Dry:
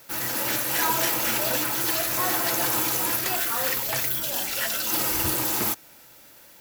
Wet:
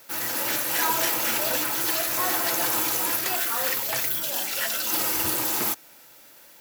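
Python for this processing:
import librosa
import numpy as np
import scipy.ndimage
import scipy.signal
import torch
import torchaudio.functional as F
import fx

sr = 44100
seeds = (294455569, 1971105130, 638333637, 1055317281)

y = fx.low_shelf(x, sr, hz=140.0, db=-11.5)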